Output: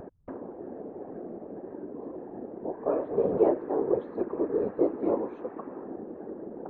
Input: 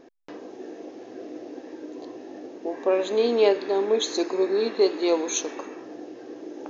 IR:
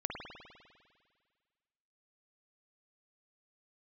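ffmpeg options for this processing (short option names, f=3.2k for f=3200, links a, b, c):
-af "acompressor=mode=upward:threshold=-28dB:ratio=2.5,afftfilt=real='hypot(re,im)*cos(2*PI*random(0))':imag='hypot(re,im)*sin(2*PI*random(1))':win_size=512:overlap=0.75,lowpass=f=1.3k:w=0.5412,lowpass=f=1.3k:w=1.3066,volume=1.5dB"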